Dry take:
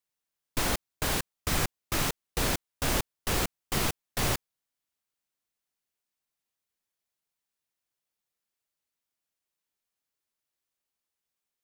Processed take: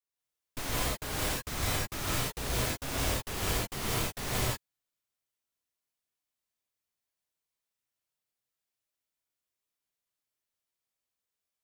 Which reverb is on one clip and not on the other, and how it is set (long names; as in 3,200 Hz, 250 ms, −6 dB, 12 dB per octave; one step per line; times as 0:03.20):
reverb whose tail is shaped and stops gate 220 ms rising, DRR −7 dB
level −10 dB